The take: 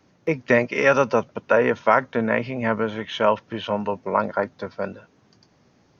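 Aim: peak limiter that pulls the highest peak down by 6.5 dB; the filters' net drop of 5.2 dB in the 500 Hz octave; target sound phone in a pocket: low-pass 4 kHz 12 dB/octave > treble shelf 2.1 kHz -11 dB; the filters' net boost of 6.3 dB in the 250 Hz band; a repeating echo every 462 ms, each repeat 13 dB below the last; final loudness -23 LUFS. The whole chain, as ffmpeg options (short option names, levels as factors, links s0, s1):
-af "equalizer=f=250:t=o:g=9,equalizer=f=500:t=o:g=-7.5,alimiter=limit=0.335:level=0:latency=1,lowpass=4000,highshelf=f=2100:g=-11,aecho=1:1:462|924|1386:0.224|0.0493|0.0108,volume=1.26"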